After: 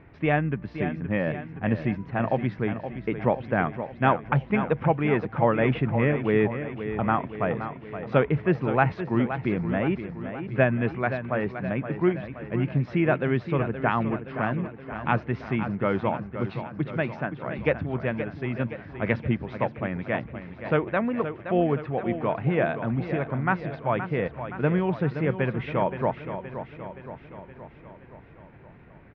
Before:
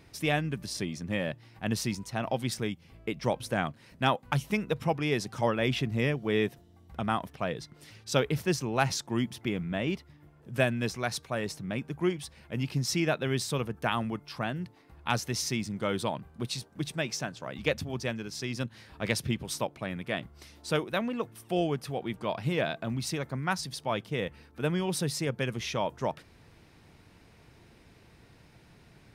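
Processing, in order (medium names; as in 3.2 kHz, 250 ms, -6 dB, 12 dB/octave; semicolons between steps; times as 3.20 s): inverse Chebyshev low-pass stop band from 8.6 kHz, stop band 70 dB; feedback delay 521 ms, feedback 58%, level -10 dB; trim +5.5 dB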